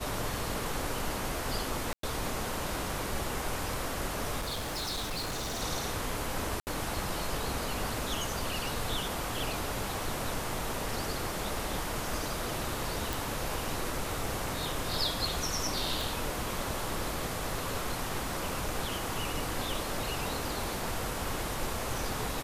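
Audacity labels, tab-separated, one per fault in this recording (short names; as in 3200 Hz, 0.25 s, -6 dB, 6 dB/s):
1.930000	2.030000	gap 0.103 s
4.400000	5.630000	clipped -31.5 dBFS
6.600000	6.670000	gap 69 ms
13.130000	13.130000	pop
16.010000	16.010000	pop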